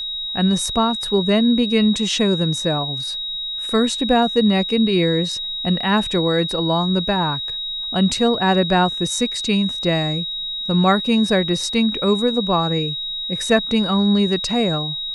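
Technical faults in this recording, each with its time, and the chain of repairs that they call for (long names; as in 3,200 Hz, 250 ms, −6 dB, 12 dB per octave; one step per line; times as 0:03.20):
whistle 3,800 Hz −24 dBFS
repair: notch filter 3,800 Hz, Q 30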